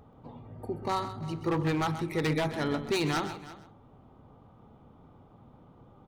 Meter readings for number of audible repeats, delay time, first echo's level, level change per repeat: 3, 130 ms, −11.5 dB, repeats not evenly spaced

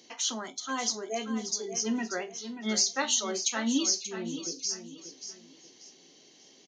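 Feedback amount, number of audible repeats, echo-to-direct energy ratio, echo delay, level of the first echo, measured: 31%, 3, −9.5 dB, 584 ms, −10.0 dB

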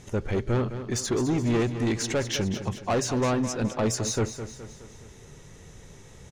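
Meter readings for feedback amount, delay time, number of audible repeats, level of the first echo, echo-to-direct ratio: 49%, 210 ms, 4, −11.0 dB, −10.0 dB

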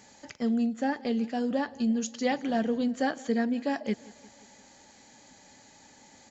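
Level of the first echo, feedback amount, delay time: −22.0 dB, 59%, 175 ms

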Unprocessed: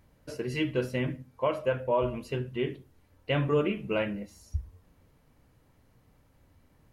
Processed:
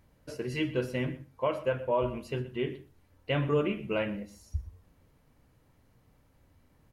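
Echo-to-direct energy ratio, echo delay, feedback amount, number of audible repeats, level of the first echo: −17.5 dB, 122 ms, repeats not evenly spaced, 1, −17.5 dB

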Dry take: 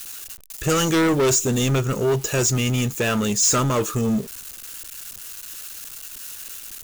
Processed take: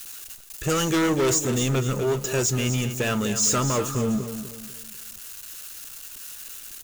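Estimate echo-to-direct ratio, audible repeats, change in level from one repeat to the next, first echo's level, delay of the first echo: −9.5 dB, 3, −9.0 dB, −10.0 dB, 248 ms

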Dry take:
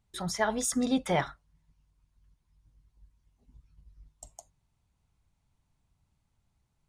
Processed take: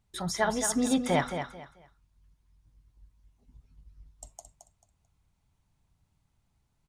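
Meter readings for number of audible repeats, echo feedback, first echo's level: 3, 25%, −8.0 dB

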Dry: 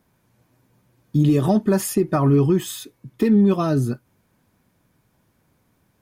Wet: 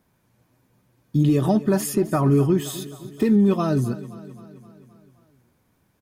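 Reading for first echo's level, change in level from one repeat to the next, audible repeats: −17.0 dB, −4.5 dB, 4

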